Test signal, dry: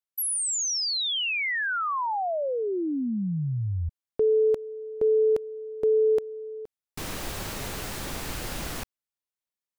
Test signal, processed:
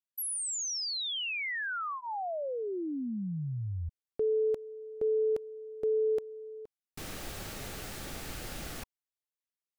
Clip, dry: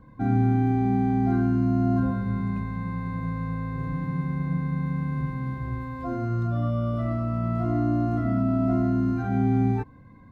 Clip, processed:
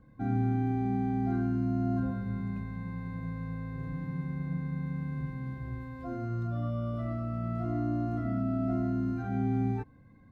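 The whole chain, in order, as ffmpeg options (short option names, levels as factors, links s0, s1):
-af "bandreject=f=1000:w=7.1,volume=0.447"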